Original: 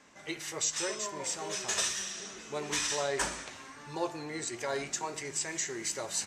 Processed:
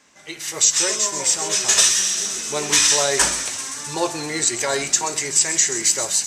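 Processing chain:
high-shelf EQ 2,800 Hz +9 dB
automatic gain control gain up to 11.5 dB
on a send: delay with a high-pass on its return 130 ms, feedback 83%, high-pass 5,600 Hz, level −9.5 dB

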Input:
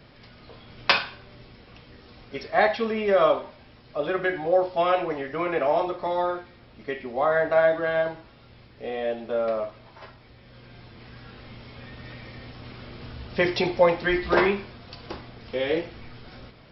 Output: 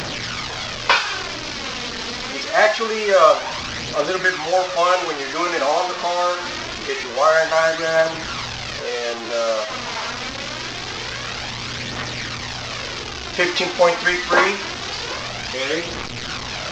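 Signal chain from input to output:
linear delta modulator 32 kbit/s, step −26 dBFS
spectral tilt +2 dB per octave
phase shifter 0.25 Hz, delay 4.5 ms, feedback 40%
dynamic equaliser 1,200 Hz, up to +5 dB, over −37 dBFS, Q 1.5
level +3.5 dB

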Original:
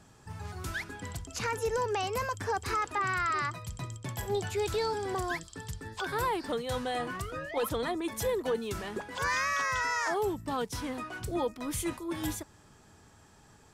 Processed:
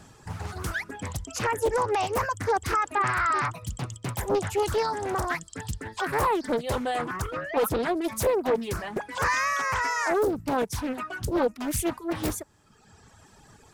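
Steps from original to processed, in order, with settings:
dynamic equaliser 3,700 Hz, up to −6 dB, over −49 dBFS, Q 0.78
reverb reduction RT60 1.3 s
high-shelf EQ 11,000 Hz +3.5 dB
highs frequency-modulated by the lows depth 0.81 ms
level +7.5 dB

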